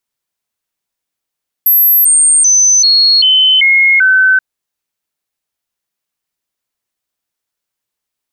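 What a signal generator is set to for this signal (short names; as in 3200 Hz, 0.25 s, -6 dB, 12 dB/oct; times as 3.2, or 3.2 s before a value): stepped sine 12200 Hz down, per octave 2, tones 7, 0.39 s, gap 0.00 s -5 dBFS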